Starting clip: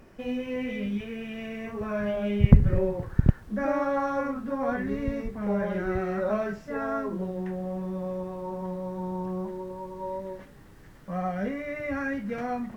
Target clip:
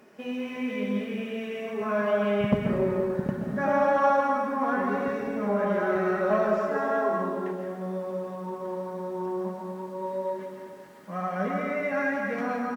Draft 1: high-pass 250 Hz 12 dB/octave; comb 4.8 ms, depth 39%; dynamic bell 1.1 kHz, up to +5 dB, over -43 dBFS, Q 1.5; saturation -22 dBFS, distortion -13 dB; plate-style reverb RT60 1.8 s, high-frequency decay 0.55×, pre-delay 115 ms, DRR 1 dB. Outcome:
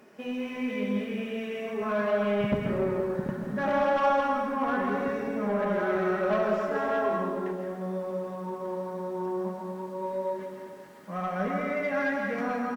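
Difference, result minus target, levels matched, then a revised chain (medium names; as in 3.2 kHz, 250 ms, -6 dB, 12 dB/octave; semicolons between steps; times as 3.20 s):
saturation: distortion +8 dB
high-pass 250 Hz 12 dB/octave; comb 4.8 ms, depth 39%; dynamic bell 1.1 kHz, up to +5 dB, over -43 dBFS, Q 1.5; saturation -13.5 dBFS, distortion -21 dB; plate-style reverb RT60 1.8 s, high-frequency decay 0.55×, pre-delay 115 ms, DRR 1 dB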